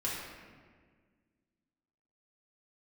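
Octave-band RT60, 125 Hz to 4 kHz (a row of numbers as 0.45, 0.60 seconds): 2.1, 2.3, 1.8, 1.5, 1.5, 1.1 seconds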